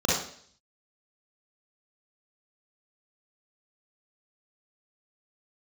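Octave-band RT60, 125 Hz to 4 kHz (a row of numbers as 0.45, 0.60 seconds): 0.55, 0.60, 0.60, 0.55, 0.55, 0.65 seconds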